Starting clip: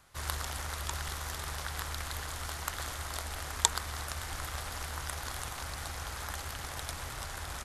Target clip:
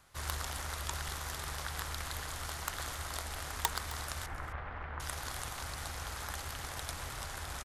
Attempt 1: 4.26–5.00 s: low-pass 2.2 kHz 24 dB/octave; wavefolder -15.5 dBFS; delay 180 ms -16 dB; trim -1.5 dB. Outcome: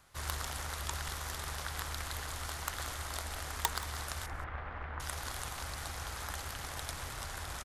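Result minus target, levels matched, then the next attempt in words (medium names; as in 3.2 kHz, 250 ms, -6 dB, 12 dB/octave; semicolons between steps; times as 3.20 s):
echo 84 ms early
4.26–5.00 s: low-pass 2.2 kHz 24 dB/octave; wavefolder -15.5 dBFS; delay 264 ms -16 dB; trim -1.5 dB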